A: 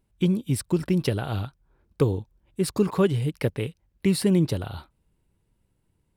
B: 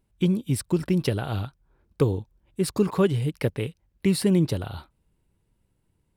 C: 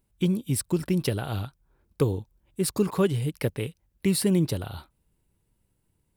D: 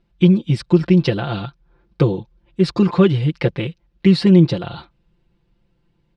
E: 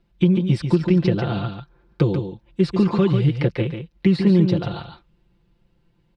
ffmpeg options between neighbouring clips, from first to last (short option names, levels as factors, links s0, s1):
-af anull
-af "highshelf=f=7500:g=9.5,volume=0.794"
-af "lowpass=f=4600:w=0.5412,lowpass=f=4600:w=1.3066,aecho=1:1:5.8:0.95,volume=2.11"
-filter_complex "[0:a]acrossover=split=420|1900[s0][s1][s2];[s0]acompressor=threshold=0.2:ratio=4[s3];[s1]acompressor=threshold=0.0398:ratio=4[s4];[s2]acompressor=threshold=0.0126:ratio=4[s5];[s3][s4][s5]amix=inputs=3:normalize=0,aecho=1:1:143:0.447"